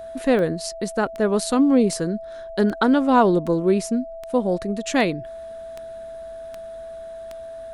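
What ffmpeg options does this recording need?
-af "adeclick=t=4,bandreject=f=660:w=30"

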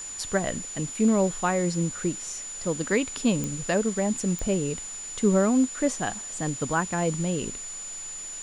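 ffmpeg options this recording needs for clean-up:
-af "adeclick=t=4,bandreject=f=7k:w=30,afwtdn=0.0063"

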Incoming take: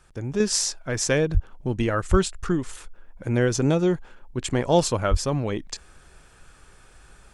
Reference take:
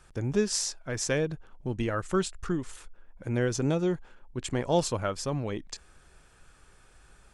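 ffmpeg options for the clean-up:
-filter_complex "[0:a]asplit=3[a][b][c];[a]afade=t=out:st=1.33:d=0.02[d];[b]highpass=f=140:w=0.5412,highpass=f=140:w=1.3066,afade=t=in:st=1.33:d=0.02,afade=t=out:st=1.45:d=0.02[e];[c]afade=t=in:st=1.45:d=0.02[f];[d][e][f]amix=inputs=3:normalize=0,asplit=3[g][h][i];[g]afade=t=out:st=2.1:d=0.02[j];[h]highpass=f=140:w=0.5412,highpass=f=140:w=1.3066,afade=t=in:st=2.1:d=0.02,afade=t=out:st=2.22:d=0.02[k];[i]afade=t=in:st=2.22:d=0.02[l];[j][k][l]amix=inputs=3:normalize=0,asplit=3[m][n][o];[m]afade=t=out:st=5.1:d=0.02[p];[n]highpass=f=140:w=0.5412,highpass=f=140:w=1.3066,afade=t=in:st=5.1:d=0.02,afade=t=out:st=5.22:d=0.02[q];[o]afade=t=in:st=5.22:d=0.02[r];[p][q][r]amix=inputs=3:normalize=0,asetnsamples=n=441:p=0,asendcmd='0.4 volume volume -6dB',volume=0dB"

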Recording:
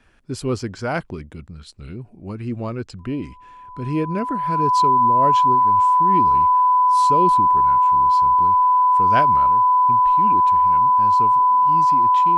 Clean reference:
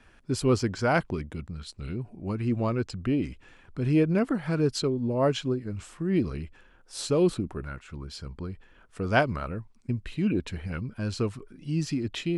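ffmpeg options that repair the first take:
-af "bandreject=f=1k:w=30,asetnsamples=n=441:p=0,asendcmd='9.48 volume volume 4.5dB',volume=0dB"

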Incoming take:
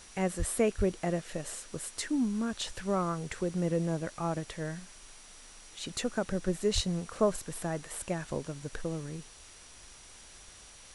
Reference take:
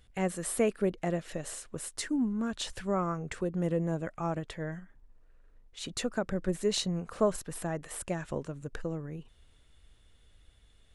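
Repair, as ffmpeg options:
-filter_complex "[0:a]bandreject=f=5.8k:w=30,asplit=3[a][b][c];[a]afade=t=out:st=0.38:d=0.02[d];[b]highpass=f=140:w=0.5412,highpass=f=140:w=1.3066,afade=t=in:st=0.38:d=0.02,afade=t=out:st=0.5:d=0.02[e];[c]afade=t=in:st=0.5:d=0.02[f];[d][e][f]amix=inputs=3:normalize=0,asplit=3[g][h][i];[g]afade=t=out:st=0.77:d=0.02[j];[h]highpass=f=140:w=0.5412,highpass=f=140:w=1.3066,afade=t=in:st=0.77:d=0.02,afade=t=out:st=0.89:d=0.02[k];[i]afade=t=in:st=0.89:d=0.02[l];[j][k][l]amix=inputs=3:normalize=0,asplit=3[m][n][o];[m]afade=t=out:st=6.74:d=0.02[p];[n]highpass=f=140:w=0.5412,highpass=f=140:w=1.3066,afade=t=in:st=6.74:d=0.02,afade=t=out:st=6.86:d=0.02[q];[o]afade=t=in:st=6.86:d=0.02[r];[p][q][r]amix=inputs=3:normalize=0,afwtdn=0.0028"

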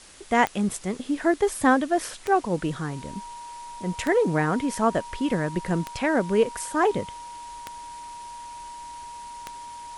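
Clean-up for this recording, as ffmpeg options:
-af "adeclick=t=4,bandreject=f=950:w=30,afwtdn=0.0045"

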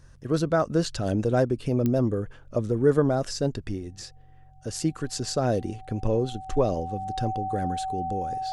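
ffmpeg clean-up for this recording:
-af "adeclick=t=4,bandreject=f=45.6:t=h:w=4,bandreject=f=91.2:t=h:w=4,bandreject=f=136.8:t=h:w=4,bandreject=f=760:w=30"

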